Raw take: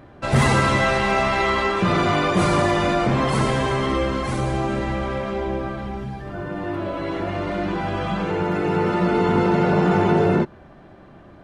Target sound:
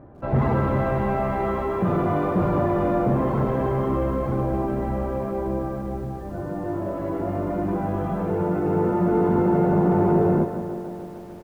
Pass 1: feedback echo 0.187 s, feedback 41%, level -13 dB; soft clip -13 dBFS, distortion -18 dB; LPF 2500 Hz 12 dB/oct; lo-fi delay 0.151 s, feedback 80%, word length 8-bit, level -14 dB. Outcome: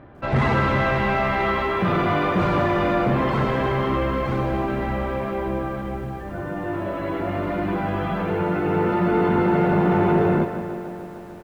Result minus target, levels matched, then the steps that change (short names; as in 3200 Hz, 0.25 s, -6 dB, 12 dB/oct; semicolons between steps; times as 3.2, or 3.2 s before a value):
2000 Hz band +10.0 dB
change: LPF 890 Hz 12 dB/oct